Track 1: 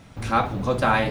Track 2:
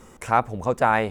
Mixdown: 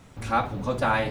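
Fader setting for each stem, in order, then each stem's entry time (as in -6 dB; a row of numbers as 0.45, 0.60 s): -4.5, -9.5 dB; 0.00, 0.00 s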